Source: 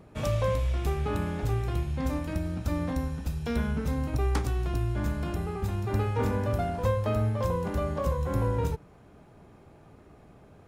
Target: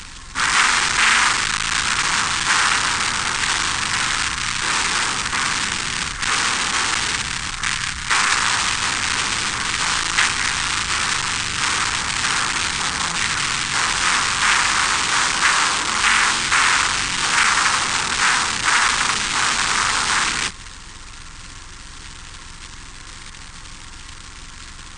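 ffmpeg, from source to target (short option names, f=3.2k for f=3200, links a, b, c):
-af "highshelf=f=3.2k:g=-4,aresample=11025,asoftclip=type=tanh:threshold=-26dB,aresample=44100,acrusher=bits=5:mode=log:mix=0:aa=0.000001,aeval=exprs='val(0)+0.00447*(sin(2*PI*50*n/s)+sin(2*PI*2*50*n/s)/2+sin(2*PI*3*50*n/s)/3+sin(2*PI*4*50*n/s)/4+sin(2*PI*5*50*n/s)/5)':c=same,aeval=exprs='0.0631*sin(PI/2*3.98*val(0)/0.0631)':c=same,aexciter=amount=13.7:drive=7.7:freq=2.3k,asetrate=18846,aresample=44100,volume=-7dB"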